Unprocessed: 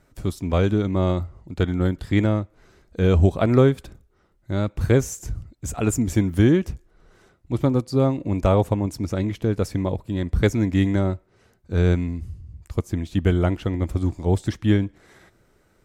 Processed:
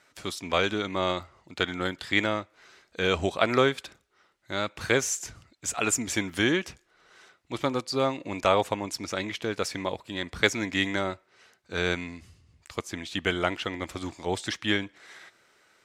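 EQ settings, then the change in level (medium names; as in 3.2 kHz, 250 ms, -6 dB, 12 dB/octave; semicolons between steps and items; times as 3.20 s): band-pass filter 3.2 kHz, Q 0.63; +8.0 dB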